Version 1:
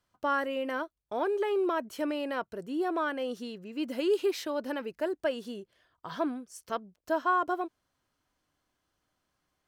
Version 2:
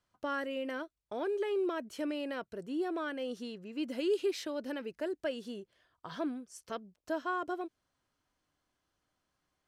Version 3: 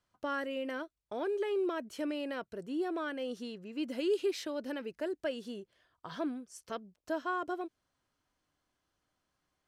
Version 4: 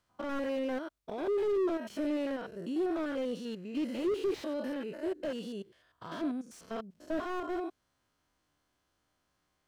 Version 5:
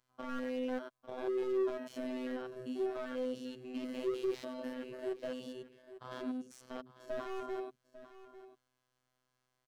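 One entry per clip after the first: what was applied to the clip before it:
dynamic EQ 970 Hz, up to -8 dB, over -44 dBFS, Q 1.2; LPF 11000 Hz 12 dB/oct; gain -2.5 dB
nothing audible
stepped spectrum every 0.1 s; slew limiter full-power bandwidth 9.6 Hz; gain +5 dB
robotiser 127 Hz; echo 0.848 s -15 dB; gain -2 dB

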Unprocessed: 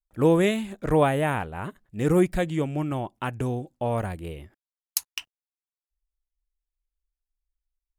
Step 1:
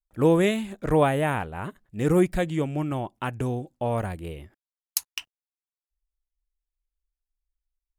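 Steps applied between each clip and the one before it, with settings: nothing audible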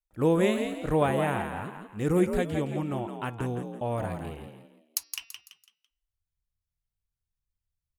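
de-hum 228.8 Hz, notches 25; frequency-shifting echo 0.167 s, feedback 35%, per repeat +55 Hz, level -7 dB; gain -4 dB

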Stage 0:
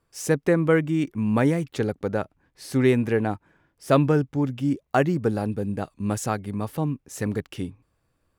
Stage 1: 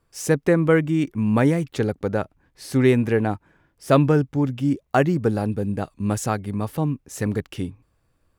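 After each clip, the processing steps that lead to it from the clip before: low shelf 67 Hz +6 dB; gain +2 dB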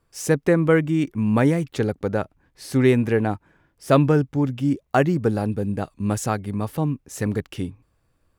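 nothing audible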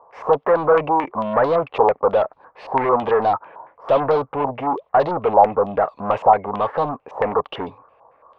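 overdrive pedal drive 33 dB, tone 1400 Hz, clips at -4.5 dBFS; band shelf 720 Hz +15.5 dB; stepped low-pass 9 Hz 900–4100 Hz; gain -17 dB

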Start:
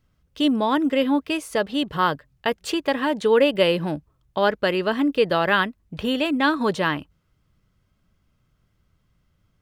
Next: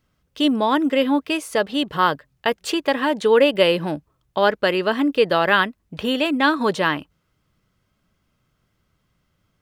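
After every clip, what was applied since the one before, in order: low shelf 130 Hz -10 dB; gain +3 dB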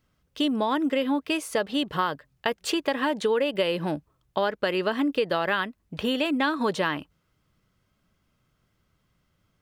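compressor 6:1, threshold -19 dBFS, peak gain reduction 8.5 dB; gain -2 dB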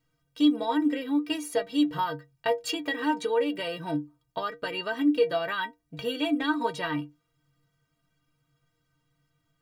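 metallic resonator 140 Hz, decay 0.28 s, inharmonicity 0.03; gain +8 dB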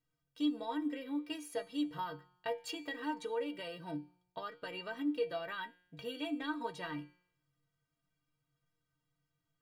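resonator 180 Hz, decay 0.79 s, harmonics all, mix 60%; gain -4 dB

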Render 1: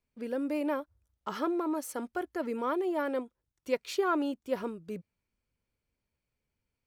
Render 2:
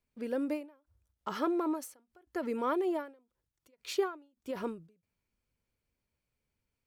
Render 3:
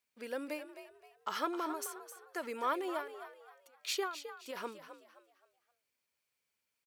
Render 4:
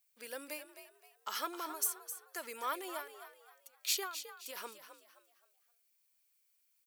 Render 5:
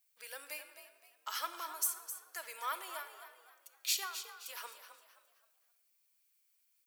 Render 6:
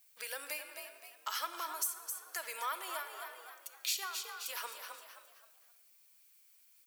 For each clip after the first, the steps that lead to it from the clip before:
ending taper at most 150 dB/s
HPF 1500 Hz 6 dB/oct; on a send: frequency-shifting echo 0.262 s, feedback 34%, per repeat +61 Hz, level -11 dB; on the sum: gain +4.5 dB
RIAA curve recording; gain -4 dB
HPF 800 Hz 12 dB/oct; shoebox room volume 1500 m³, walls mixed, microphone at 0.63 m
compressor 2:1, threshold -52 dBFS, peak gain reduction 13 dB; gain +10 dB

